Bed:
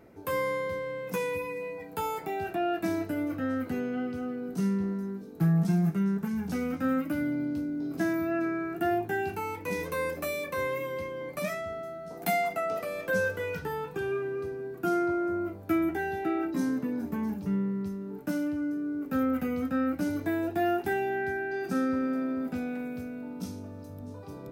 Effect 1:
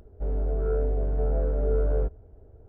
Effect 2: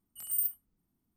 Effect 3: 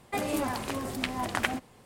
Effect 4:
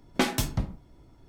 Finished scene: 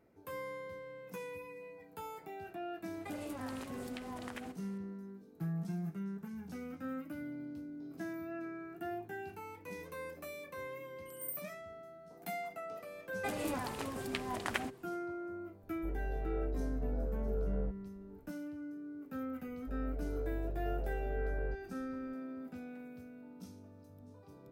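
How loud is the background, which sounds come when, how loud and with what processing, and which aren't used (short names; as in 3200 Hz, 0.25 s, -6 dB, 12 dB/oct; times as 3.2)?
bed -13.5 dB
2.93 add 3 -7.5 dB + compressor 3:1, threshold -37 dBFS
10.9 add 2 -12 dB
13.11 add 3 -7.5 dB
15.63 add 1 -11.5 dB
19.47 add 1 -13 dB
not used: 4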